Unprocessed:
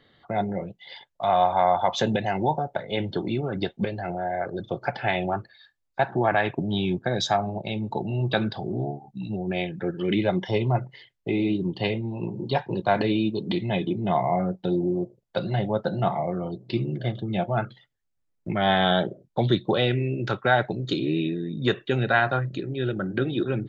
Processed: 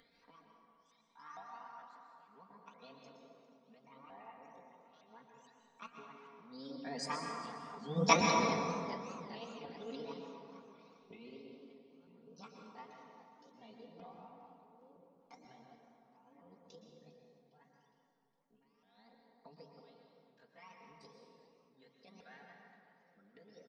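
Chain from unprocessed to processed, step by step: repeated pitch sweeps +9 st, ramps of 0.469 s; Doppler pass-by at 8.05, 10 m/s, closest 1.5 m; low shelf 400 Hz -3.5 dB; comb 4.3 ms, depth 97%; upward compressor, threshold -52 dBFS; tremolo 0.72 Hz, depth 95%; plate-style reverb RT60 2.3 s, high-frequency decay 0.55×, pre-delay 0.105 s, DRR 1 dB; warbling echo 0.406 s, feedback 54%, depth 137 cents, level -17.5 dB

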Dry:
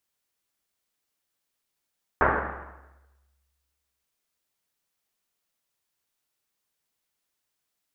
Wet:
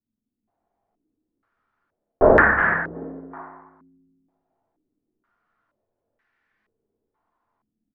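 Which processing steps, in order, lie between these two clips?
self-modulated delay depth 0.07 ms; frequency-shifting echo 0.363 s, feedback 34%, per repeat +100 Hz, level -12 dB; reverb RT60 0.60 s, pre-delay 3 ms, DRR -7 dB; AGC gain up to 5 dB; stepped low-pass 2.1 Hz 240–1800 Hz; gain -2.5 dB

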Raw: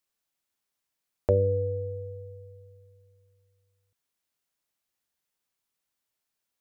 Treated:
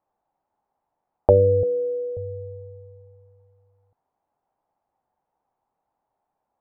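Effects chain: 1.63–2.17 elliptic high-pass 170 Hz, stop band 40 dB; in parallel at +0.5 dB: compressor, threshold -39 dBFS, peak gain reduction 19.5 dB; on the sum: synth low-pass 820 Hz, resonance Q 4.9; gain +3.5 dB

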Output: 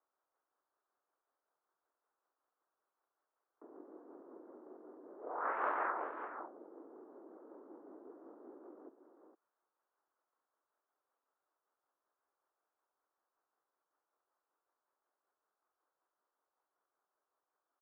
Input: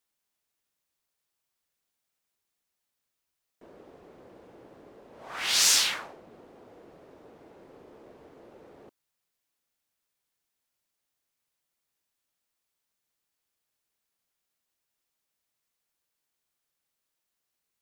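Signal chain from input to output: echo 0.455 s -9.5 dB; tremolo 5.3 Hz, depth 33%; mistuned SSB +89 Hz 430–2200 Hz; pitch shift -9 st; mismatched tape noise reduction encoder only; gain +1 dB

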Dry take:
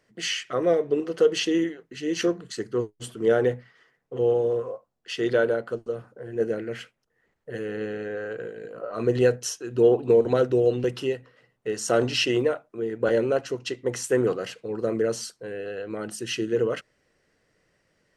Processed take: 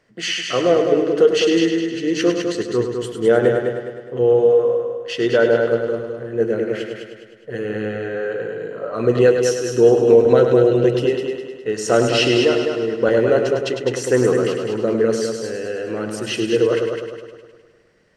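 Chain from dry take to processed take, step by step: high shelf 8300 Hz -10 dB; on a send: multi-head echo 0.103 s, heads first and second, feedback 49%, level -7.5 dB; on the sum: gain +6 dB

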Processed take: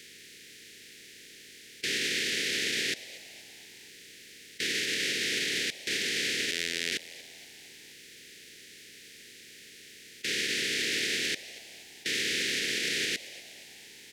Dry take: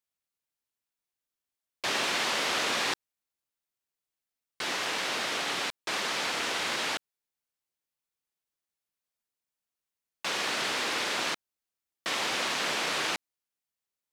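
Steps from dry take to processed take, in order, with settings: per-bin compression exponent 0.4; limiter -21.5 dBFS, peak gain reduction 9 dB; 6.51–6.92 robotiser 84.6 Hz; elliptic band-stop 440–1800 Hz, stop band 60 dB; frequency-shifting echo 0.236 s, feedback 52%, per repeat +120 Hz, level -17.5 dB; gain +2.5 dB

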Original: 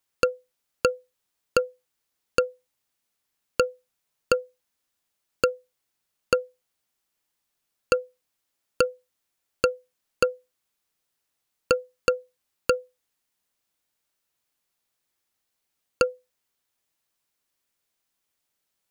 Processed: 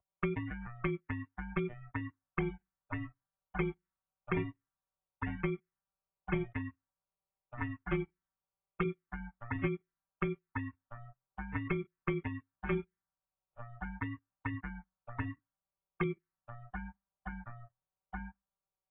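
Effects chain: sample leveller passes 5; overloaded stage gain 22.5 dB; robotiser 199 Hz; echoes that change speed 92 ms, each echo -3 st, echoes 3, each echo -6 dB; dynamic EQ 630 Hz, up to -3 dB, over -43 dBFS, Q 0.85; vibrato 0.72 Hz 21 cents; mistuned SSB -230 Hz 160–2300 Hz; envelope phaser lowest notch 290 Hz, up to 1300 Hz, full sweep at -35.5 dBFS; gain +4.5 dB; AAC 16 kbps 22050 Hz

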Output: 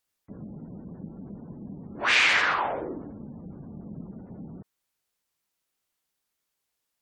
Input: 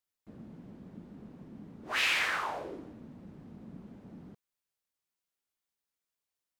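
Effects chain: spectral gate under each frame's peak -30 dB strong; varispeed -6%; gain +8 dB

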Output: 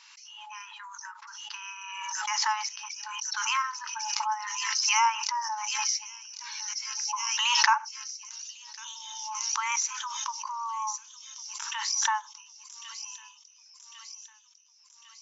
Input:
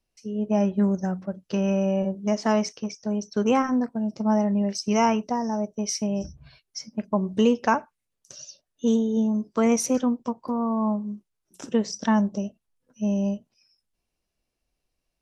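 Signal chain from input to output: thin delay 1.101 s, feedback 59%, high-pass 4900 Hz, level -5 dB; FFT band-pass 840–7500 Hz; backwards sustainer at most 26 dB/s

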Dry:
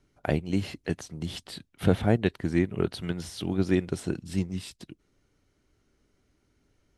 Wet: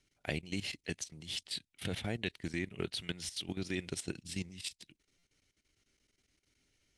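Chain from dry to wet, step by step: level quantiser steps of 14 dB; band shelf 4500 Hz +13 dB 2.8 oct; stuck buffer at 5.18, samples 256, times 8; gain -8 dB

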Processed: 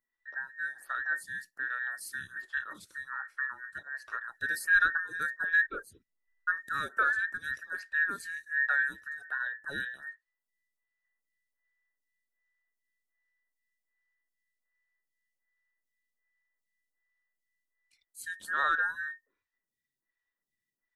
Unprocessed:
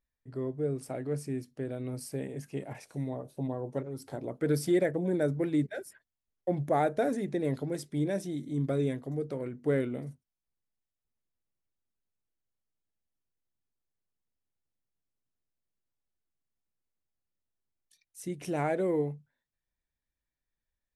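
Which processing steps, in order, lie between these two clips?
band inversion scrambler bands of 2000 Hz; 5.63–6.55 tilt -2 dB/oct; photocell phaser 1.3 Hz; gain +2 dB

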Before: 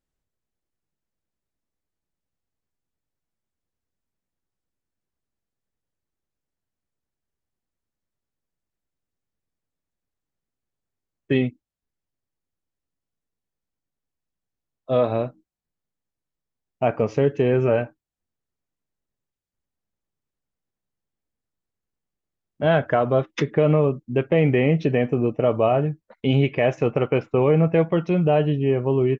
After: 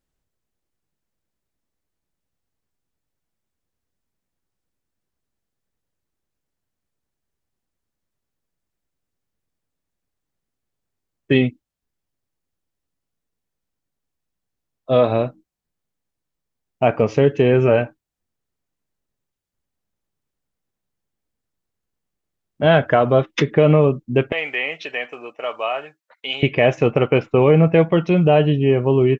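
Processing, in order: 24.32–26.43 HPF 1100 Hz 12 dB/oct; dynamic EQ 3100 Hz, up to +4 dB, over -45 dBFS, Q 1.2; gain +4.5 dB

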